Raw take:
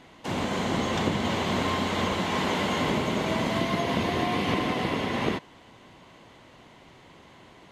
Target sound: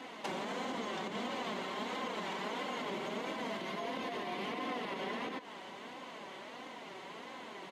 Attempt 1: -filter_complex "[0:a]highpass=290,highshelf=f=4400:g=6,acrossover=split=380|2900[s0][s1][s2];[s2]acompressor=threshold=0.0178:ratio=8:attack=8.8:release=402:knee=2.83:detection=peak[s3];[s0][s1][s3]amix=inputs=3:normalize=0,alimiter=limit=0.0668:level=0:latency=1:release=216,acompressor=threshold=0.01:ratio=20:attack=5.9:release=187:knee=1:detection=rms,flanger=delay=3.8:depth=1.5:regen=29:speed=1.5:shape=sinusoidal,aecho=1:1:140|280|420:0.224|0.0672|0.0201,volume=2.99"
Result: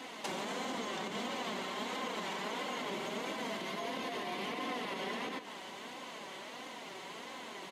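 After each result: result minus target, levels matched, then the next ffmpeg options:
echo-to-direct +8 dB; 8 kHz band +5.5 dB
-filter_complex "[0:a]highpass=290,highshelf=f=4400:g=6,acrossover=split=380|2900[s0][s1][s2];[s2]acompressor=threshold=0.0178:ratio=8:attack=8.8:release=402:knee=2.83:detection=peak[s3];[s0][s1][s3]amix=inputs=3:normalize=0,alimiter=limit=0.0668:level=0:latency=1:release=216,acompressor=threshold=0.01:ratio=20:attack=5.9:release=187:knee=1:detection=rms,flanger=delay=3.8:depth=1.5:regen=29:speed=1.5:shape=sinusoidal,aecho=1:1:140|280:0.0891|0.0267,volume=2.99"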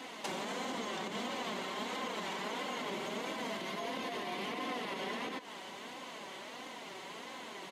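8 kHz band +5.5 dB
-filter_complex "[0:a]highpass=290,highshelf=f=4400:g=-4.5,acrossover=split=380|2900[s0][s1][s2];[s2]acompressor=threshold=0.0178:ratio=8:attack=8.8:release=402:knee=2.83:detection=peak[s3];[s0][s1][s3]amix=inputs=3:normalize=0,alimiter=limit=0.0668:level=0:latency=1:release=216,acompressor=threshold=0.01:ratio=20:attack=5.9:release=187:knee=1:detection=rms,flanger=delay=3.8:depth=1.5:regen=29:speed=1.5:shape=sinusoidal,aecho=1:1:140|280:0.0891|0.0267,volume=2.99"

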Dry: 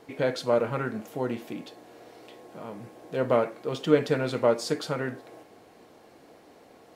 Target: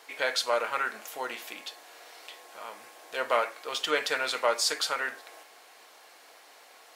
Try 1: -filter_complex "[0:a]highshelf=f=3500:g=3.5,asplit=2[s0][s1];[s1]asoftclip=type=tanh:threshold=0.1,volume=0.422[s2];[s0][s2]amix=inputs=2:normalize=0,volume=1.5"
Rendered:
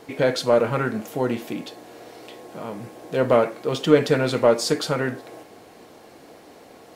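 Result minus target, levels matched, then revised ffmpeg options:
1 kHz band -4.5 dB
-filter_complex "[0:a]highpass=1100,highshelf=f=3500:g=3.5,asplit=2[s0][s1];[s1]asoftclip=type=tanh:threshold=0.1,volume=0.422[s2];[s0][s2]amix=inputs=2:normalize=0,volume=1.5"

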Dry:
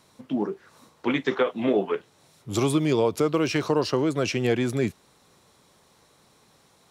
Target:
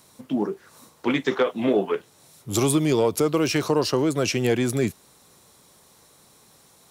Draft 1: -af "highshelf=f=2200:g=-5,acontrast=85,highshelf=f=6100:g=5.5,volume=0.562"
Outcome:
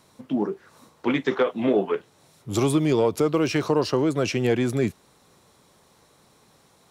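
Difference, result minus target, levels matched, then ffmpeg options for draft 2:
8 kHz band -7.0 dB
-af "highshelf=f=2200:g=-5,acontrast=85,highshelf=f=6100:g=17.5,volume=0.562"

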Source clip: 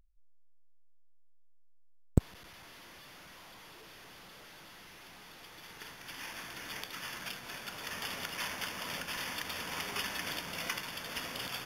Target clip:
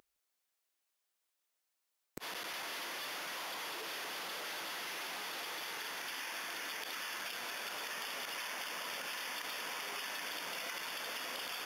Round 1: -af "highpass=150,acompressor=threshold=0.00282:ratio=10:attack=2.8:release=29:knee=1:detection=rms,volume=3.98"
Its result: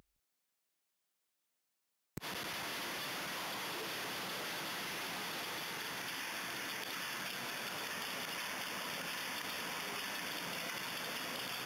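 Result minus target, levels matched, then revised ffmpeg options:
125 Hz band +12.0 dB
-af "highpass=390,acompressor=threshold=0.00282:ratio=10:attack=2.8:release=29:knee=1:detection=rms,volume=3.98"

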